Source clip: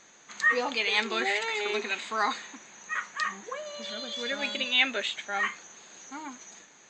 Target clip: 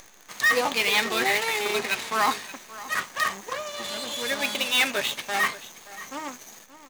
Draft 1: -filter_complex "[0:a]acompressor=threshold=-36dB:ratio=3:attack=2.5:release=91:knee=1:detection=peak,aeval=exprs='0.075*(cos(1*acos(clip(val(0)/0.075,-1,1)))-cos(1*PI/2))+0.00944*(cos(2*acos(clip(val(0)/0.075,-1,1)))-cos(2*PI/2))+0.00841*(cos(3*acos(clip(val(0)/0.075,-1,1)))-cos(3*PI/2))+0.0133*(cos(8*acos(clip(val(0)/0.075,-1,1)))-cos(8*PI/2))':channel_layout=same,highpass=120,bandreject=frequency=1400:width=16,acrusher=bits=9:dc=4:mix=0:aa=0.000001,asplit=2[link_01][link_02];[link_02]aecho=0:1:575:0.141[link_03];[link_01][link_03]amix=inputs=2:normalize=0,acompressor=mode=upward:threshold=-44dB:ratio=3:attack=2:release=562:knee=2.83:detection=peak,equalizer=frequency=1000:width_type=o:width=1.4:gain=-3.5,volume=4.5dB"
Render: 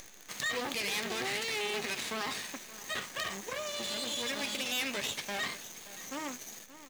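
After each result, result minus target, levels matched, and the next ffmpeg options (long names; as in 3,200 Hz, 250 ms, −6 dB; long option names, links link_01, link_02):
downward compressor: peak gain reduction +14.5 dB; 1,000 Hz band −3.0 dB
-filter_complex "[0:a]aeval=exprs='0.075*(cos(1*acos(clip(val(0)/0.075,-1,1)))-cos(1*PI/2))+0.00944*(cos(2*acos(clip(val(0)/0.075,-1,1)))-cos(2*PI/2))+0.00841*(cos(3*acos(clip(val(0)/0.075,-1,1)))-cos(3*PI/2))+0.0133*(cos(8*acos(clip(val(0)/0.075,-1,1)))-cos(8*PI/2))':channel_layout=same,highpass=120,bandreject=frequency=1400:width=16,acrusher=bits=9:dc=4:mix=0:aa=0.000001,asplit=2[link_01][link_02];[link_02]aecho=0:1:575:0.141[link_03];[link_01][link_03]amix=inputs=2:normalize=0,acompressor=mode=upward:threshold=-44dB:ratio=3:attack=2:release=562:knee=2.83:detection=peak,equalizer=frequency=1000:width_type=o:width=1.4:gain=-3.5,volume=4.5dB"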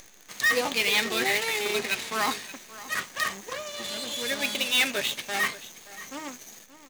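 1,000 Hz band −3.5 dB
-filter_complex "[0:a]aeval=exprs='0.075*(cos(1*acos(clip(val(0)/0.075,-1,1)))-cos(1*PI/2))+0.00944*(cos(2*acos(clip(val(0)/0.075,-1,1)))-cos(2*PI/2))+0.00841*(cos(3*acos(clip(val(0)/0.075,-1,1)))-cos(3*PI/2))+0.0133*(cos(8*acos(clip(val(0)/0.075,-1,1)))-cos(8*PI/2))':channel_layout=same,highpass=120,bandreject=frequency=1400:width=16,acrusher=bits=9:dc=4:mix=0:aa=0.000001,asplit=2[link_01][link_02];[link_02]aecho=0:1:575:0.141[link_03];[link_01][link_03]amix=inputs=2:normalize=0,acompressor=mode=upward:threshold=-44dB:ratio=3:attack=2:release=562:knee=2.83:detection=peak,equalizer=frequency=1000:width_type=o:width=1.4:gain=2.5,volume=4.5dB"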